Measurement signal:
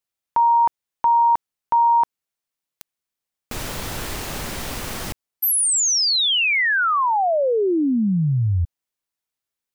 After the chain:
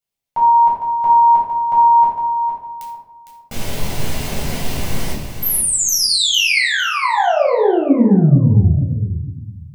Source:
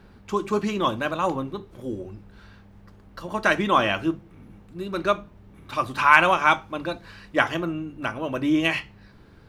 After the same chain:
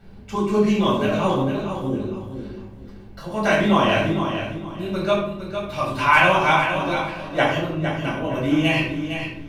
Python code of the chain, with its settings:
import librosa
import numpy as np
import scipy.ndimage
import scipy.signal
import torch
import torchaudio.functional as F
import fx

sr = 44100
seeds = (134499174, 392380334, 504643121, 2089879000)

p1 = fx.peak_eq(x, sr, hz=1300.0, db=-9.5, octaves=0.4)
p2 = p1 + fx.echo_feedback(p1, sr, ms=457, feedback_pct=26, wet_db=-8, dry=0)
p3 = fx.room_shoebox(p2, sr, seeds[0], volume_m3=1000.0, walls='furnished', distance_m=7.2)
y = F.gain(torch.from_numpy(p3), -4.5).numpy()